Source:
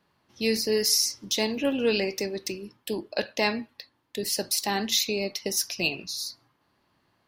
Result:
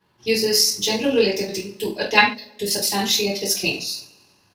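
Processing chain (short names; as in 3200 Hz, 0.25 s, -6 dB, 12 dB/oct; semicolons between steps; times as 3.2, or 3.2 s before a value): two-slope reverb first 0.55 s, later 2.7 s, from -25 dB, DRR -10 dB; spectral gain 3.48–3.74, 770–4000 Hz +11 dB; tempo 1.6×; gain -4 dB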